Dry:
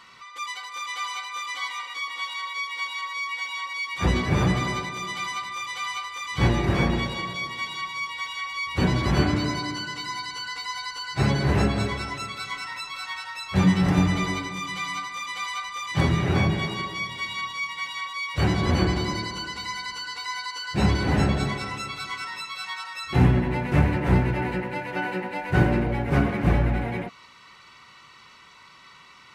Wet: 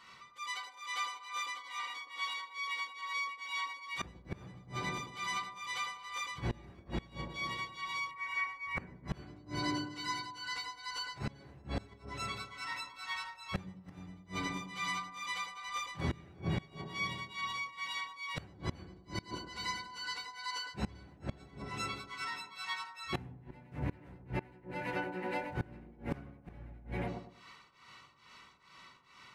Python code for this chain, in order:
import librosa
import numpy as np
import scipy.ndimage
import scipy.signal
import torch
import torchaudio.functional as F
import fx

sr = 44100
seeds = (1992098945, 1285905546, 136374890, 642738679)

y = fx.tremolo_shape(x, sr, shape='triangle', hz=2.3, depth_pct=95)
y = fx.echo_wet_lowpass(y, sr, ms=104, feedback_pct=31, hz=850.0, wet_db=-3.5)
y = fx.gate_flip(y, sr, shuts_db=-19.0, range_db=-25)
y = fx.high_shelf_res(y, sr, hz=2700.0, db=-7.0, q=3.0, at=(8.11, 9.08))
y = F.gain(torch.from_numpy(y), -4.0).numpy()